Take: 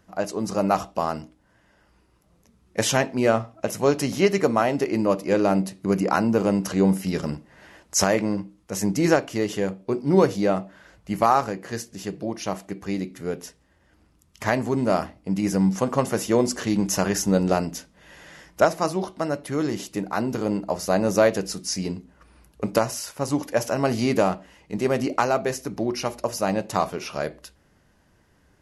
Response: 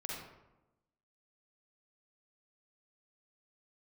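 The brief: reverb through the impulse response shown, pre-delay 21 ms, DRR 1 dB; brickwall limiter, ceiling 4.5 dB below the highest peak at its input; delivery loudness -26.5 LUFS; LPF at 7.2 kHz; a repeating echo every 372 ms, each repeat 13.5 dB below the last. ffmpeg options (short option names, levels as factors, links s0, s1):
-filter_complex "[0:a]lowpass=7200,alimiter=limit=0.299:level=0:latency=1,aecho=1:1:372|744:0.211|0.0444,asplit=2[s0][s1];[1:a]atrim=start_sample=2205,adelay=21[s2];[s1][s2]afir=irnorm=-1:irlink=0,volume=0.841[s3];[s0][s3]amix=inputs=2:normalize=0,volume=0.596"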